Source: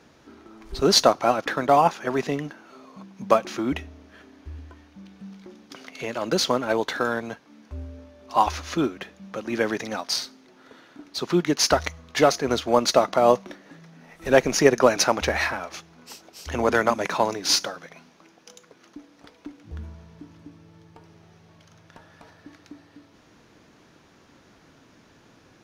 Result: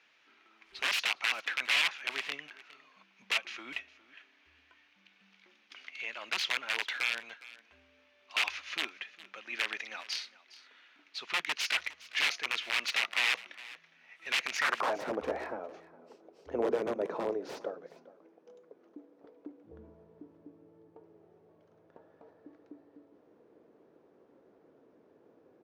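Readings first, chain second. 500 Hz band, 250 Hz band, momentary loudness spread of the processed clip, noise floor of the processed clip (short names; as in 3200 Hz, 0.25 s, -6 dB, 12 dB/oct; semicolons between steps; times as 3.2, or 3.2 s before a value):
-16.5 dB, -19.0 dB, 19 LU, -67 dBFS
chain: wrapped overs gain 15 dB; band-pass sweep 2500 Hz -> 450 Hz, 14.54–15.07; echo 0.41 s -19 dB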